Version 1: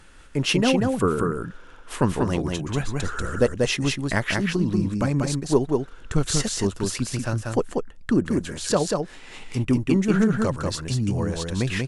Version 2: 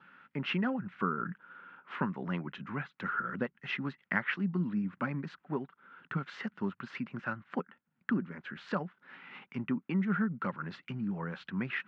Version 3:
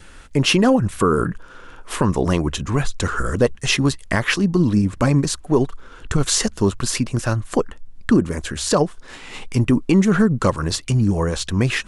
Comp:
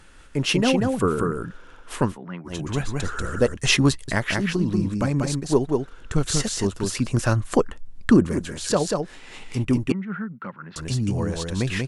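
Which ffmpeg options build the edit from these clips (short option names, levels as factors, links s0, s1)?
-filter_complex "[1:a]asplit=2[s0][s1];[2:a]asplit=2[s2][s3];[0:a]asplit=5[s4][s5][s6][s7][s8];[s4]atrim=end=2.18[s9];[s0]atrim=start=2.02:end=2.6[s10];[s5]atrim=start=2.44:end=3.572[s11];[s2]atrim=start=3.568:end=4.082[s12];[s6]atrim=start=4.078:end=7.1[s13];[s3]atrim=start=6.94:end=8.4[s14];[s7]atrim=start=8.24:end=9.922[s15];[s1]atrim=start=9.918:end=10.762[s16];[s8]atrim=start=10.758[s17];[s9][s10]acrossfade=d=0.16:c1=tri:c2=tri[s18];[s18][s11]acrossfade=d=0.16:c1=tri:c2=tri[s19];[s19][s12]acrossfade=d=0.004:c1=hsin:c2=hsin[s20];[s20][s13]acrossfade=d=0.004:c1=hsin:c2=hsin[s21];[s21][s14]acrossfade=d=0.16:c1=tri:c2=tri[s22];[s22][s15]acrossfade=d=0.16:c1=tri:c2=tri[s23];[s23][s16]acrossfade=d=0.004:c1=hsin:c2=hsin[s24];[s24][s17]acrossfade=d=0.004:c1=hsin:c2=hsin"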